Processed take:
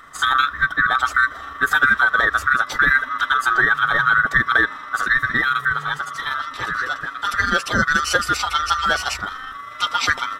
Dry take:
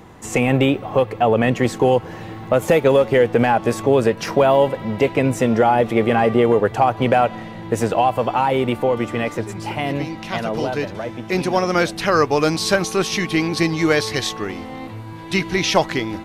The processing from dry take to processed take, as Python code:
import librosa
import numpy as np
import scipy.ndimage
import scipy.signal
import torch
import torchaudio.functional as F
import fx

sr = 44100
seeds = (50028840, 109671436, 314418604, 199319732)

y = fx.band_swap(x, sr, width_hz=1000)
y = fx.stretch_grains(y, sr, factor=0.64, grain_ms=80.0)